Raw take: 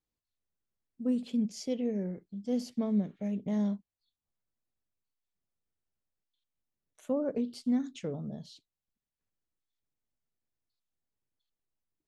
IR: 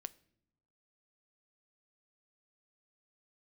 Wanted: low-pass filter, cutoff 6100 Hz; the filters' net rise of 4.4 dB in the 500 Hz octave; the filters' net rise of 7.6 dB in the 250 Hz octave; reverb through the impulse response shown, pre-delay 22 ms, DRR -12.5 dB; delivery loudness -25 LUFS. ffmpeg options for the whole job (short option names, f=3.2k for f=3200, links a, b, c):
-filter_complex "[0:a]lowpass=6.1k,equalizer=f=250:t=o:g=8,equalizer=f=500:t=o:g=3,asplit=2[a][b];[1:a]atrim=start_sample=2205,adelay=22[c];[b][c]afir=irnorm=-1:irlink=0,volume=16.5dB[d];[a][d]amix=inputs=2:normalize=0,volume=-10.5dB"